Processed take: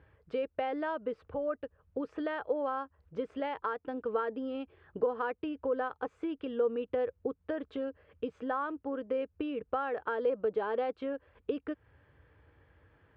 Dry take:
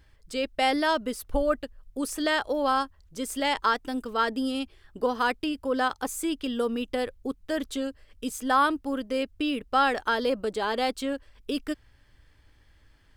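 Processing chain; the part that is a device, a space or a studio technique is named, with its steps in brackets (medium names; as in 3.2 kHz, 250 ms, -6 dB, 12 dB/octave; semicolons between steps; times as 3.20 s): bass amplifier (compression 4:1, threshold -35 dBFS, peak gain reduction 14.5 dB; cabinet simulation 70–2200 Hz, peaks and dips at 240 Hz -5 dB, 470 Hz +8 dB, 2 kHz -6 dB); treble shelf 7.9 kHz +11 dB; trim +1.5 dB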